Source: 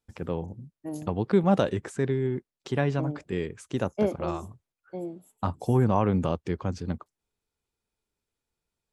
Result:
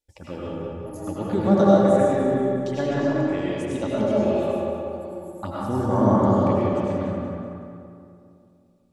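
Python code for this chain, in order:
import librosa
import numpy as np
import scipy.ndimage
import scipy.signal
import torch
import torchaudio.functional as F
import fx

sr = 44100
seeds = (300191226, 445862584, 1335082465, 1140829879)

p1 = fx.env_phaser(x, sr, low_hz=190.0, high_hz=2600.0, full_db=-22.5)
p2 = fx.low_shelf(p1, sr, hz=480.0, db=-4.0)
p3 = p2 + 0.47 * np.pad(p2, (int(3.5 * sr / 1000.0), 0))[:len(p2)]
p4 = p3 + fx.echo_feedback(p3, sr, ms=186, feedback_pct=46, wet_db=-9.0, dry=0)
y = fx.rev_freeverb(p4, sr, rt60_s=2.6, hf_ratio=0.45, predelay_ms=60, drr_db=-7.0)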